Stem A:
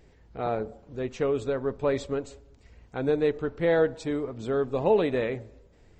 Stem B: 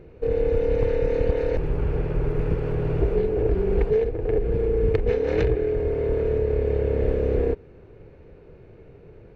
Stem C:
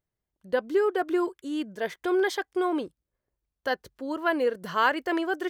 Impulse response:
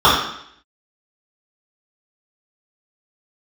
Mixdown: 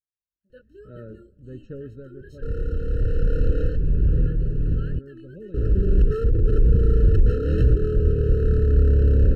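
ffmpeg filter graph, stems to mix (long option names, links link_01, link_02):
-filter_complex "[0:a]lowpass=frequency=1300:poles=1,adelay=500,volume=-10dB,afade=type=out:start_time=1.73:duration=0.61:silence=0.298538[link_01];[1:a]volume=23.5dB,asoftclip=hard,volume=-23.5dB,adelay=2200,volume=-2dB,asplit=3[link_02][link_03][link_04];[link_02]atrim=end=4.99,asetpts=PTS-STARTPTS,afade=type=out:start_time=4.986:duration=0.004:curve=hsin[link_05];[link_03]atrim=start=4.99:end=5.54,asetpts=PTS-STARTPTS,volume=0[link_06];[link_04]atrim=start=5.54,asetpts=PTS-STARTPTS,afade=type=in:duration=0.004:curve=hsin[link_07];[link_05][link_06][link_07]concat=n=3:v=0:a=1[link_08];[2:a]flanger=delay=19:depth=6:speed=2,volume=-20dB,asplit=2[link_09][link_10];[link_10]apad=whole_len=509723[link_11];[link_08][link_11]sidechaincompress=threshold=-52dB:ratio=3:attack=24:release=1120[link_12];[link_01][link_12][link_09]amix=inputs=3:normalize=0,asubboost=boost=6.5:cutoff=240,afftfilt=real='re*eq(mod(floor(b*sr/1024/630),2),0)':imag='im*eq(mod(floor(b*sr/1024/630),2),0)':win_size=1024:overlap=0.75"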